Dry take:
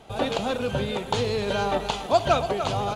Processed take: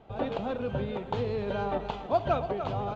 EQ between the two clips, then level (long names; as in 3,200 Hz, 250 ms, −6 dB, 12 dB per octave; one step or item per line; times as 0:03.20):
head-to-tape spacing loss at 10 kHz 33 dB
−3.5 dB